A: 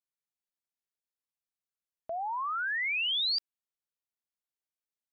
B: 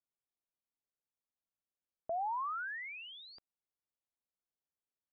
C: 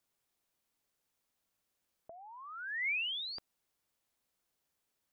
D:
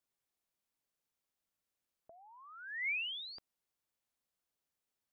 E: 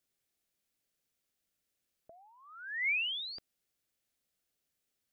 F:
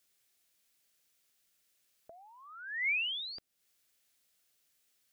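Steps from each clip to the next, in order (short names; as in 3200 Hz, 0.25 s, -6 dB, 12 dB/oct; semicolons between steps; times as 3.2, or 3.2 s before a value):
LPF 1000 Hz 12 dB/oct
negative-ratio compressor -45 dBFS, ratio -0.5; gain +6.5 dB
upward expander 1.5:1, over -44 dBFS; gain -1.5 dB
bell 980 Hz -9.5 dB 0.74 oct; gain +5.5 dB
mismatched tape noise reduction encoder only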